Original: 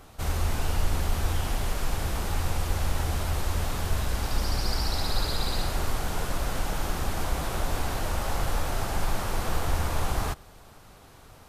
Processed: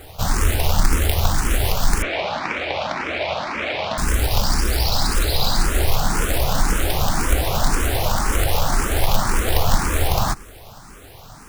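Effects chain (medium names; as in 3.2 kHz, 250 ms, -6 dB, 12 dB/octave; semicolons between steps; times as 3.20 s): in parallel at +2.5 dB: gain riding; on the sum: companded quantiser 4-bit; 2.02–3.98 s: cabinet simulation 280–4100 Hz, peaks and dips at 420 Hz -3 dB, 620 Hz +8 dB, 2.3 kHz +9 dB; barber-pole phaser +1.9 Hz; trim +4 dB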